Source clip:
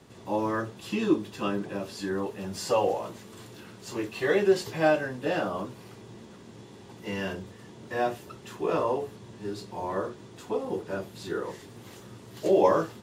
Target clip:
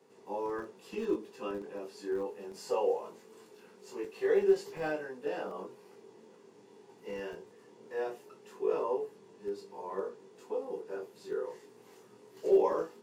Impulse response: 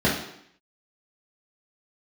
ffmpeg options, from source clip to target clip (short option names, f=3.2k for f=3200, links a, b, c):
-filter_complex "[0:a]superequalizer=7b=2.82:9b=1.58:13b=0.631,flanger=delay=20:depth=4:speed=0.21,acrossover=split=160|4000[a][b][c];[a]acrusher=bits=4:dc=4:mix=0:aa=0.000001[d];[d][b][c]amix=inputs=3:normalize=0,volume=-8.5dB"